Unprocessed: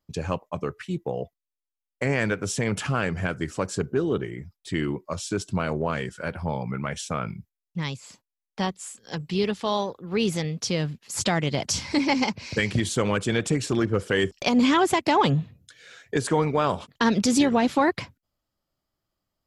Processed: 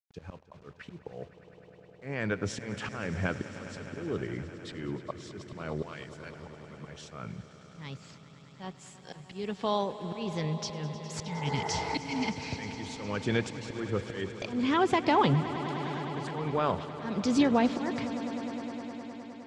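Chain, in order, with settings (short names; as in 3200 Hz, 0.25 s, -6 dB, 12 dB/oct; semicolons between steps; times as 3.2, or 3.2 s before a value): 5.82–6.75 pre-emphasis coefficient 0.9; 11.27–12.26 spectral repair 290–2100 Hz after; auto swell 0.394 s; in parallel at -3 dB: compressor, threshold -32 dBFS, peak gain reduction 15.5 dB; on the sum: bit-crush 9-bit; air absorption 120 m; on a send: swelling echo 0.103 s, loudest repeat 5, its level -17 dB; on the sum: gain -4.5 dB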